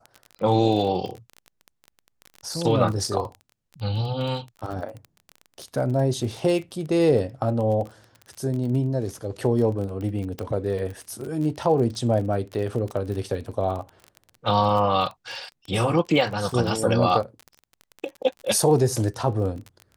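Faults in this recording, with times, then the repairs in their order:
crackle 28 per s -30 dBFS
10.39 s: pop -17 dBFS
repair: de-click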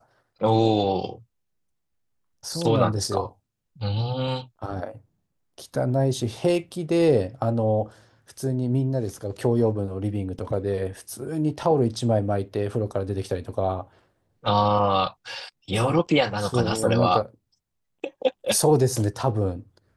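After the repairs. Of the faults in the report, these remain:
10.39 s: pop

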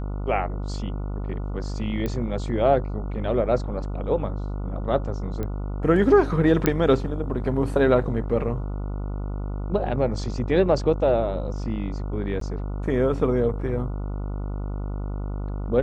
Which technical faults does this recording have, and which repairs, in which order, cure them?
buzz 50 Hz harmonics 29 -29 dBFS
2.06 s: pop -16 dBFS
5.43 s: pop -18 dBFS
6.66 s: pop -6 dBFS
12.40–12.41 s: dropout 13 ms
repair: de-click; de-hum 50 Hz, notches 29; interpolate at 12.40 s, 13 ms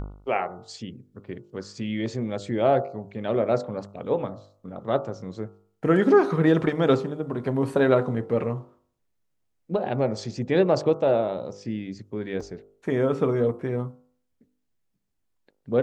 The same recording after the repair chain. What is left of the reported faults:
5.43 s: pop

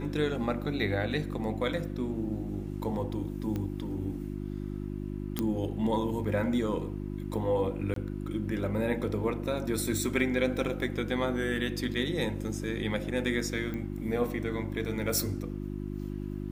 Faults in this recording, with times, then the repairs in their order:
hum 50 Hz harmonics 7 -36 dBFS
3.56 s: pop -22 dBFS
5.39 s: pop -14 dBFS
7.94–7.96 s: dropout 23 ms
13.74 s: pop -25 dBFS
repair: de-click; de-hum 50 Hz, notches 7; interpolate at 7.94 s, 23 ms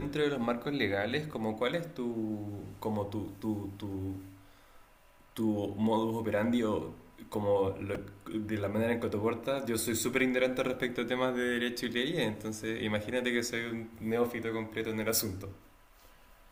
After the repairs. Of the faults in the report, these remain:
nothing left

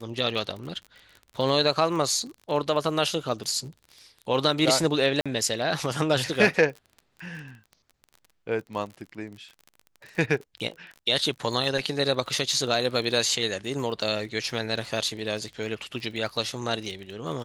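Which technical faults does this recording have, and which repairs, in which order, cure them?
crackle 34 per s -35 dBFS
5.21–5.26 s: dropout 46 ms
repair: de-click; interpolate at 5.21 s, 46 ms

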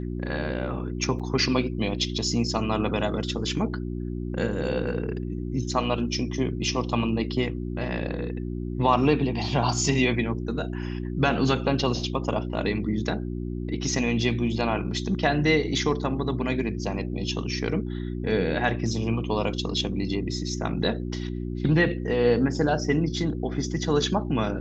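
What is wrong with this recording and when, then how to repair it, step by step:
hum 60 Hz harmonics 6 -31 dBFS
1.19–1.20 s: dropout 6.5 ms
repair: de-hum 60 Hz, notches 6; interpolate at 1.19 s, 6.5 ms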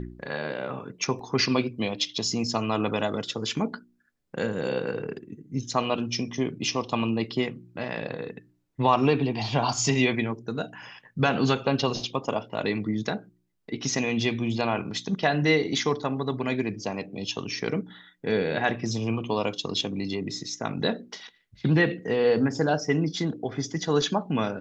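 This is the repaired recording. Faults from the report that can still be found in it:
nothing left

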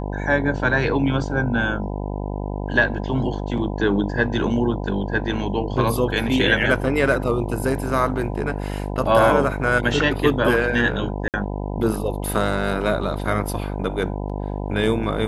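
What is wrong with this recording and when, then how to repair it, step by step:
buzz 50 Hz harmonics 20 -27 dBFS
11.28–11.34 s: dropout 58 ms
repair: de-hum 50 Hz, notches 20; interpolate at 11.28 s, 58 ms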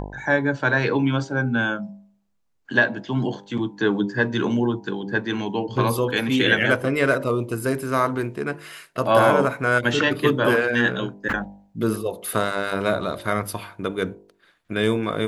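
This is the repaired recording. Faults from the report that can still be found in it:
nothing left

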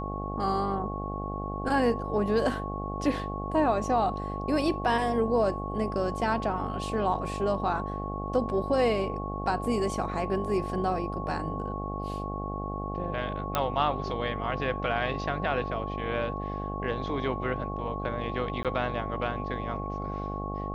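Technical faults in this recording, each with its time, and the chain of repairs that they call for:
buzz 50 Hz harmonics 17 -35 dBFS
whine 1.1 kHz -36 dBFS
13.55 s: pop -11 dBFS
18.63–18.65 s: dropout 17 ms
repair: de-click; band-stop 1.1 kHz, Q 30; de-hum 50 Hz, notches 17; interpolate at 18.63 s, 17 ms

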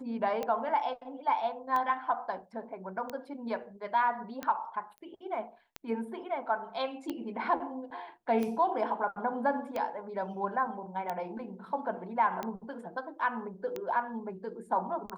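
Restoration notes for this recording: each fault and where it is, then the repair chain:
tick 45 rpm -21 dBFS
4.98 s: pop -37 dBFS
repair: de-click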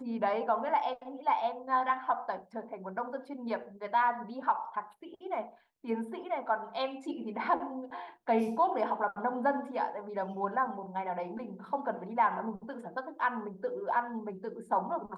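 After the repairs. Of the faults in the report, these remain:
nothing left

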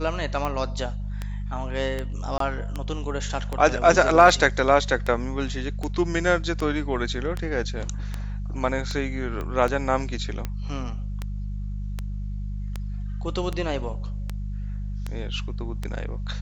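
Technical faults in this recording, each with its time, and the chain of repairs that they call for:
hum 50 Hz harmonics 4 -30 dBFS
tick 78 rpm -15 dBFS
2.38–2.40 s: dropout 23 ms
9.41 s: pop -20 dBFS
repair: de-click; de-hum 50 Hz, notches 4; interpolate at 2.38 s, 23 ms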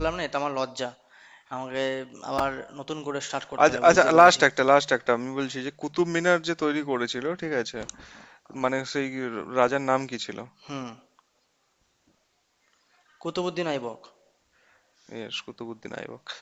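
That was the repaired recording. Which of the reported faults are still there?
nothing left

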